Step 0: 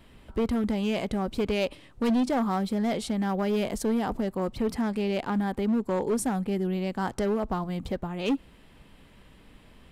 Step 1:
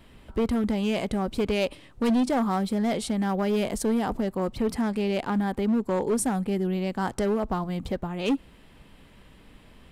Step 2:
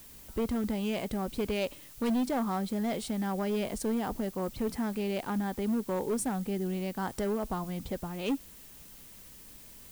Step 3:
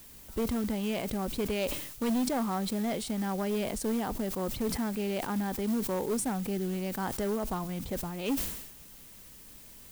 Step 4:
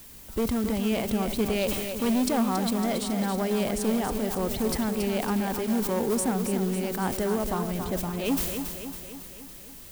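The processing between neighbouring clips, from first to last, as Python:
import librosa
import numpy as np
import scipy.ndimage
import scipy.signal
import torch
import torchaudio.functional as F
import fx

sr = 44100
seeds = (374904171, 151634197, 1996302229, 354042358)

y1 = fx.dynamic_eq(x, sr, hz=9100.0, q=2.2, threshold_db=-56.0, ratio=4.0, max_db=4)
y1 = F.gain(torch.from_numpy(y1), 1.5).numpy()
y2 = fx.dmg_noise_colour(y1, sr, seeds[0], colour='blue', level_db=-46.0)
y2 = F.gain(torch.from_numpy(y2), -6.0).numpy()
y3 = fx.quant_float(y2, sr, bits=2)
y3 = fx.sustainer(y3, sr, db_per_s=59.0)
y4 = fx.echo_feedback(y3, sr, ms=277, feedback_pct=57, wet_db=-7.5)
y4 = F.gain(torch.from_numpy(y4), 4.0).numpy()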